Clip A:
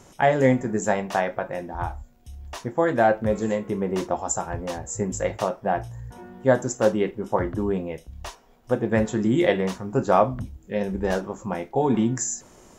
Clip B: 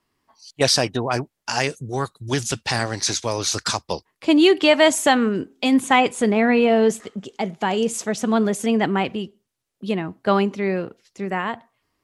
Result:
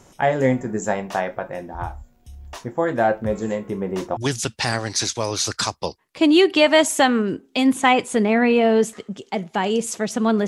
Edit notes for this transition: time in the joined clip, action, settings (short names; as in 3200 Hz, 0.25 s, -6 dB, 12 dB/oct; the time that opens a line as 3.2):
clip A
4.17 switch to clip B from 2.24 s